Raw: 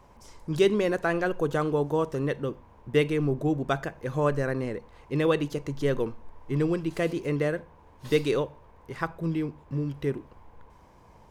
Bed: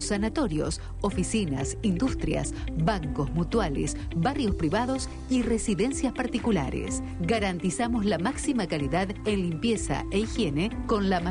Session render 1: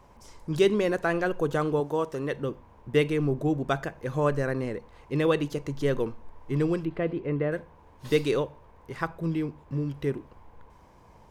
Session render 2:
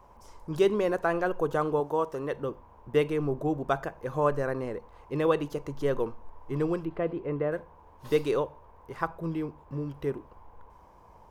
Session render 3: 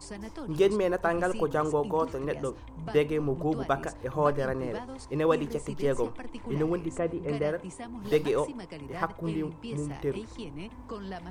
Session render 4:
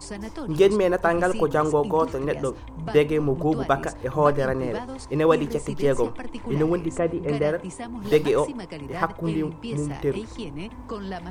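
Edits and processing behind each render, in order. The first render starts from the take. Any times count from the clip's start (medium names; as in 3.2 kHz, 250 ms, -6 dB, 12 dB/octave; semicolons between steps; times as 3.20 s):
1.80–2.33 s: bass shelf 200 Hz -9 dB; 6.85–7.52 s: distance through air 480 m
graphic EQ 125/250/1000/2000/4000/8000 Hz -5/-4/+4/-5/-5/-5 dB
add bed -14 dB
trim +6 dB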